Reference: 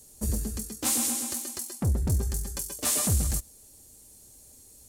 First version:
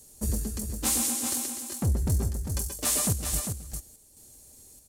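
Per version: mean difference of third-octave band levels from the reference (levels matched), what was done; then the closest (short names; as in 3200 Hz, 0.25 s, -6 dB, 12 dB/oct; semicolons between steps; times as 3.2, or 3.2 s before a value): 3.5 dB: chopper 1.2 Hz, depth 65%, duty 75%; on a send: echo 0.399 s -6.5 dB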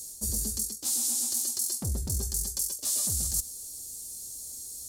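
6.5 dB: resonant high shelf 3300 Hz +11.5 dB, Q 1.5; reverse; compressor 6:1, threshold -27 dBFS, peak gain reduction 15.5 dB; reverse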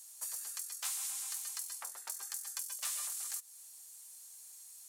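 13.0 dB: HPF 1000 Hz 24 dB/oct; compressor 4:1, threshold -38 dBFS, peak gain reduction 13 dB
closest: first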